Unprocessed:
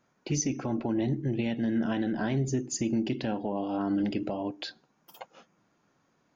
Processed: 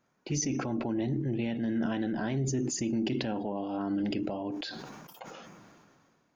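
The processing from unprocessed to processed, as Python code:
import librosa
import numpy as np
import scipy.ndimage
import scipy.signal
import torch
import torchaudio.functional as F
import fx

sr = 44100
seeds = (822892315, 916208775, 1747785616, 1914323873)

y = fx.high_shelf(x, sr, hz=7800.0, db=-11.5, at=(1.16, 1.64))
y = fx.sustainer(y, sr, db_per_s=28.0)
y = F.gain(torch.from_numpy(y), -3.0).numpy()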